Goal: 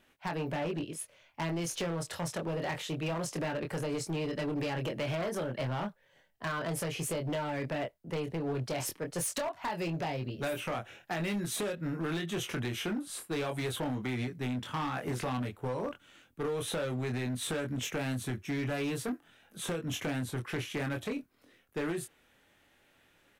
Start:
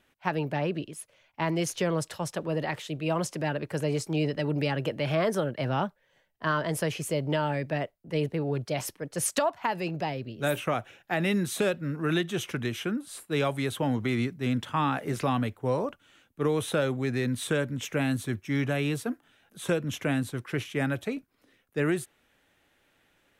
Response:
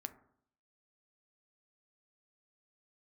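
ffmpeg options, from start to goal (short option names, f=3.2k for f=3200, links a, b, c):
-filter_complex "[0:a]asplit=2[a][b];[b]adelay=24,volume=-5dB[c];[a][c]amix=inputs=2:normalize=0,acompressor=threshold=-28dB:ratio=10,asoftclip=type=hard:threshold=-29.5dB"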